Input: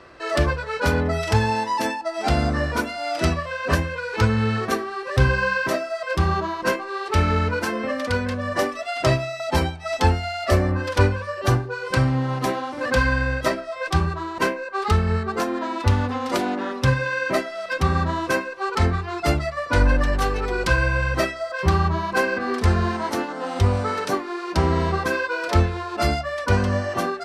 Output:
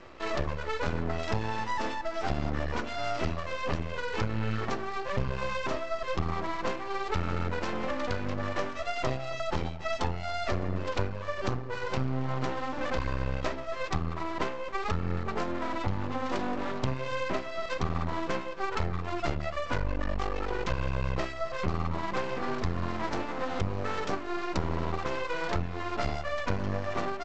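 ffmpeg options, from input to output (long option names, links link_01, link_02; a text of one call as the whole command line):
ffmpeg -i in.wav -filter_complex "[0:a]aemphasis=mode=reproduction:type=50fm,bandreject=frequency=1600:width=7.1,acompressor=threshold=-26dB:ratio=5,aresample=16000,aeval=exprs='max(val(0),0)':channel_layout=same,aresample=44100,asplit=2[link_01][link_02];[link_02]adelay=274.1,volume=-18dB,highshelf=frequency=4000:gain=-6.17[link_03];[link_01][link_03]amix=inputs=2:normalize=0,volume=1.5dB" out.wav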